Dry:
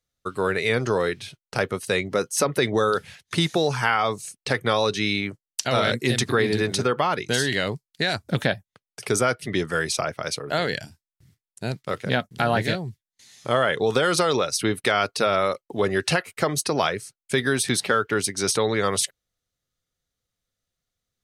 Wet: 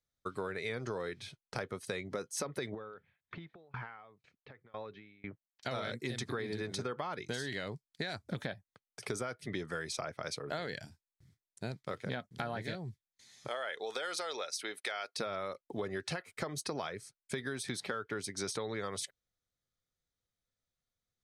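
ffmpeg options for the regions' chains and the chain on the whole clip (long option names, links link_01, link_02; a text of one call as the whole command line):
ffmpeg -i in.wav -filter_complex "[0:a]asettb=1/sr,asplit=3[link_01][link_02][link_03];[link_01]atrim=end=2.744[link_04];[link_02]atrim=start=2.74:end=5.63,asetpts=PTS-STARTPTS,afade=type=in:duration=0.004:curve=qsin,afade=type=out:start_time=2.886:duration=0.004:curve=qsin,lowpass=frequency=2800:width=0.5412,lowpass=frequency=2800:width=1.3066,acompressor=threshold=-26dB:ratio=12:attack=3.2:release=140:knee=1:detection=peak,aeval=exprs='val(0)*pow(10,-27*if(lt(mod(2*n/s,1),2*abs(2)/1000),1-mod(2*n/s,1)/(2*abs(2)/1000),(mod(2*n/s,1)-2*abs(2)/1000)/(1-2*abs(2)/1000))/20)':channel_layout=same[link_05];[link_03]atrim=start=5.626[link_06];[link_04][link_05]acrossfade=duration=0.004:curve1=hsin:curve2=qsin[link_07];[link_07][link_06]acrossfade=duration=0.004:curve1=qsin:curve2=hsin,asettb=1/sr,asplit=3[link_08][link_09][link_10];[link_08]atrim=end=13.484[link_11];[link_09]atrim=start=13.48:end=15.19,asetpts=PTS-STARTPTS,afade=type=in:duration=0.004:curve=qsin,afade=type=out:start_time=1.706:duration=0.004:curve=qsin,highpass=670,equalizer=frequency=1100:width=2.7:gain=-7[link_12];[link_10]atrim=start=15.186[link_13];[link_11][link_12]acrossfade=duration=0.004:curve1=hsin:curve2=qsin[link_14];[link_14][link_13]acrossfade=duration=0.004:curve1=qsin:curve2=hsin,highshelf=frequency=11000:gain=-11,bandreject=frequency=2800:width=8.7,acompressor=threshold=-27dB:ratio=6,volume=-7.5dB" out.wav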